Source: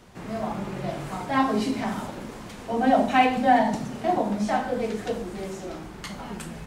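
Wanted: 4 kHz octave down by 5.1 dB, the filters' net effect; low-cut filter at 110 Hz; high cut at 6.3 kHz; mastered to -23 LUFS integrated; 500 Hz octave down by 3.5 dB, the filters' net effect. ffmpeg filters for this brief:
-af "highpass=110,lowpass=6300,equalizer=f=500:t=o:g=-4.5,equalizer=f=4000:t=o:g=-7,volume=1.58"

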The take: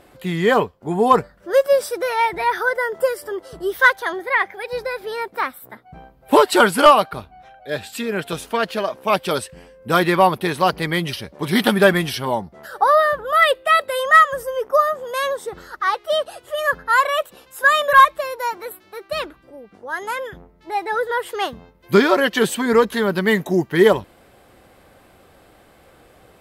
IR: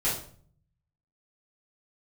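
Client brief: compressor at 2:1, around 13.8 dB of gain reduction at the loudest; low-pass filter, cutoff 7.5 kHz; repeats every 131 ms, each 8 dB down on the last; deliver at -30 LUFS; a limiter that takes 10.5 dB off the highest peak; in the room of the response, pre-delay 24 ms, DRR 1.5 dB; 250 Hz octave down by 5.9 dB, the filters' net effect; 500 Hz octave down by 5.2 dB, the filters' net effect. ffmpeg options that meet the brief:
-filter_complex "[0:a]lowpass=7500,equalizer=f=250:t=o:g=-7,equalizer=f=500:t=o:g=-4.5,acompressor=threshold=0.0224:ratio=2,alimiter=level_in=1.06:limit=0.0631:level=0:latency=1,volume=0.944,aecho=1:1:131|262|393|524|655:0.398|0.159|0.0637|0.0255|0.0102,asplit=2[s0][s1];[1:a]atrim=start_sample=2205,adelay=24[s2];[s1][s2]afir=irnorm=-1:irlink=0,volume=0.282[s3];[s0][s3]amix=inputs=2:normalize=0,volume=1.19"

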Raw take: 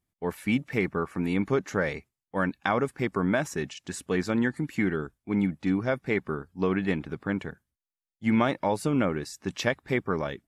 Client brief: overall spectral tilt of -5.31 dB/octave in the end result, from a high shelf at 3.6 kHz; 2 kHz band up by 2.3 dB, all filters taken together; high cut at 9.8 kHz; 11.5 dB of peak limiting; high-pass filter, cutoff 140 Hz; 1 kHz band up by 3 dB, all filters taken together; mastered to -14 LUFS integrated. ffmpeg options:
-af "highpass=140,lowpass=9800,equalizer=f=1000:t=o:g=3.5,equalizer=f=2000:t=o:g=3,highshelf=f=3600:g=-5,volume=7.5,alimiter=limit=0.944:level=0:latency=1"

